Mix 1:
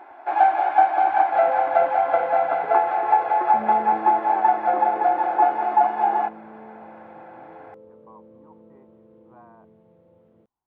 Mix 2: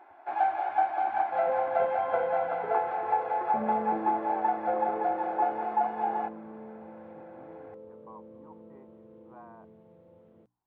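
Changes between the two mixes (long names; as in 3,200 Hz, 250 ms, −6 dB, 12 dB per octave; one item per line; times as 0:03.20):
first sound −9.5 dB
master: add mains-hum notches 60/120/180/240/300 Hz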